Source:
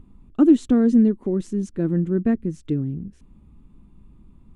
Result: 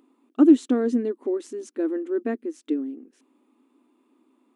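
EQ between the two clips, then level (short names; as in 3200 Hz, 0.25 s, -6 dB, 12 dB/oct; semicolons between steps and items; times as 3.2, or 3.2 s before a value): brick-wall FIR high-pass 240 Hz; 0.0 dB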